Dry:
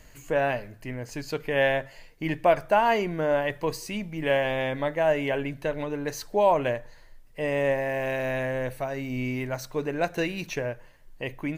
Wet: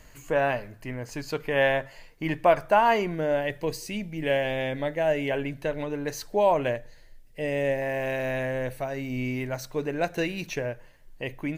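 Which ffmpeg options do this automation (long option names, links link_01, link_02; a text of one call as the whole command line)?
ffmpeg -i in.wav -af "asetnsamples=nb_out_samples=441:pad=0,asendcmd='3.15 equalizer g -8.5;5.31 equalizer g -2.5;6.76 equalizer g -12;7.82 equalizer g -3',equalizer=frequency=1100:width_type=o:width=0.72:gain=3" out.wav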